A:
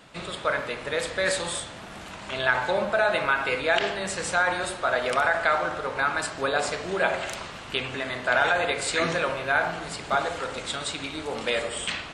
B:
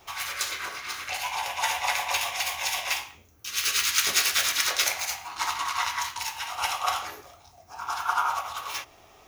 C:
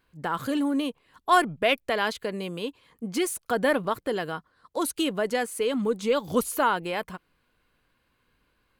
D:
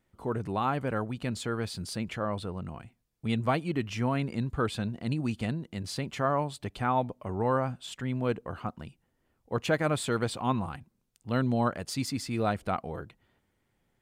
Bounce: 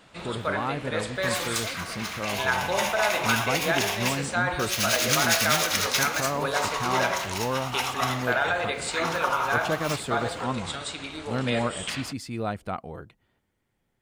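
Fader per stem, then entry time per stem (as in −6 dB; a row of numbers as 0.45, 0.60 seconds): −3.0, −1.0, −18.0, −1.5 decibels; 0.00, 1.15, 0.00, 0.00 seconds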